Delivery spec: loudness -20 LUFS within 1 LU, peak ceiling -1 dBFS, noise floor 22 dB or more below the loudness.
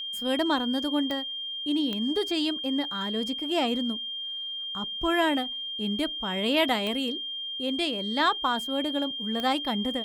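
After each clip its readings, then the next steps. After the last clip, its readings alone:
clicks found 4; steady tone 3.2 kHz; tone level -32 dBFS; loudness -27.5 LUFS; peak level -12.5 dBFS; loudness target -20.0 LUFS
-> de-click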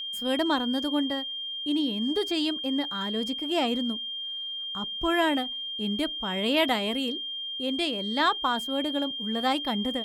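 clicks found 0; steady tone 3.2 kHz; tone level -32 dBFS
-> band-stop 3.2 kHz, Q 30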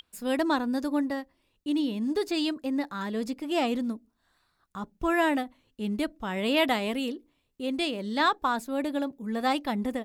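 steady tone not found; loudness -29.0 LUFS; peak level -13.0 dBFS; loudness target -20.0 LUFS
-> trim +9 dB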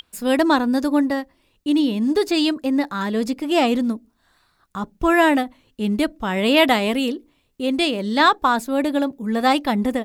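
loudness -20.0 LUFS; peak level -4.0 dBFS; noise floor -65 dBFS

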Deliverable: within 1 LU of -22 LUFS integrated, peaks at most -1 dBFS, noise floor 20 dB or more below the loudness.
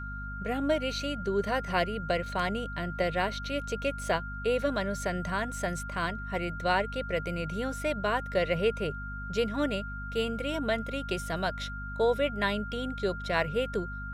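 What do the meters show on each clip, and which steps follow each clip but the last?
hum 50 Hz; highest harmonic 250 Hz; hum level -37 dBFS; steady tone 1.4 kHz; tone level -39 dBFS; loudness -31.0 LUFS; peak level -12.5 dBFS; loudness target -22.0 LUFS
-> de-hum 50 Hz, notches 5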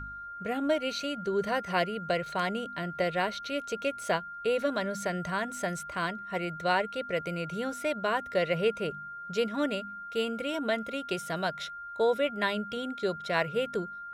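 hum not found; steady tone 1.4 kHz; tone level -39 dBFS
-> band-stop 1.4 kHz, Q 30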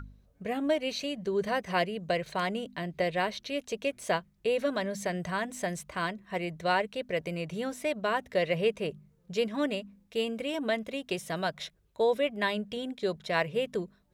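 steady tone not found; loudness -31.5 LUFS; peak level -13.5 dBFS; loudness target -22.0 LUFS
-> trim +9.5 dB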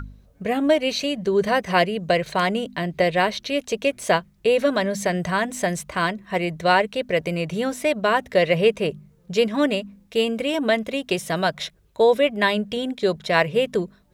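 loudness -22.0 LUFS; peak level -4.0 dBFS; noise floor -57 dBFS

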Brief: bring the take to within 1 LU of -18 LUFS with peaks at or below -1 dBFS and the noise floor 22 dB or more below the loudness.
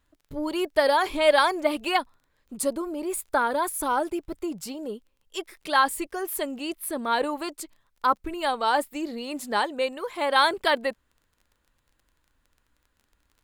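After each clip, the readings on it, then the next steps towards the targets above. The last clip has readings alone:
tick rate 15 per s; loudness -26.0 LUFS; peak level -6.5 dBFS; loudness target -18.0 LUFS
-> de-click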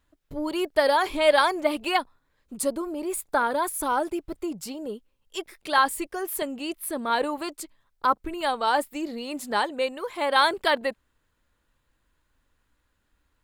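tick rate 1.6 per s; loudness -26.0 LUFS; peak level -6.5 dBFS; loudness target -18.0 LUFS
-> trim +8 dB; peak limiter -1 dBFS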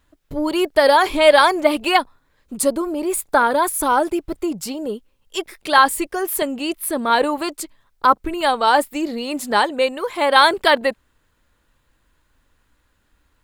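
loudness -18.0 LUFS; peak level -1.0 dBFS; noise floor -65 dBFS

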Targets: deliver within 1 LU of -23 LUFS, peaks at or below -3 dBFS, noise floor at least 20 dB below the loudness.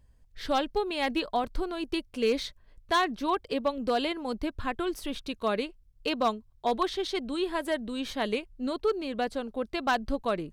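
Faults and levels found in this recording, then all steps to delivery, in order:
clipped samples 0.3%; clipping level -18.5 dBFS; dropouts 2; longest dropout 2.0 ms; loudness -30.5 LUFS; peak level -18.5 dBFS; loudness target -23.0 LUFS
-> clip repair -18.5 dBFS; interpolate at 1.44/2.42 s, 2 ms; trim +7.5 dB

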